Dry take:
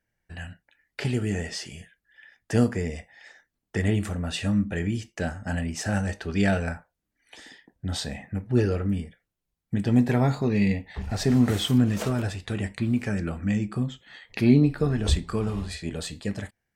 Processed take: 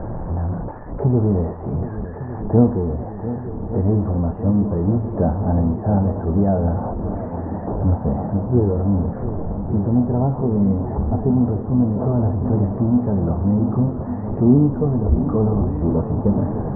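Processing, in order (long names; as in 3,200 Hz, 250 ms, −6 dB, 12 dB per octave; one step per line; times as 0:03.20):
converter with a step at zero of −26 dBFS
Butterworth low-pass 1,000 Hz 36 dB per octave
speech leveller within 4 dB 0.5 s
feedback echo with a long and a short gap by turns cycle 1,157 ms, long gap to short 1.5 to 1, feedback 72%, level −12.5 dB
level +4.5 dB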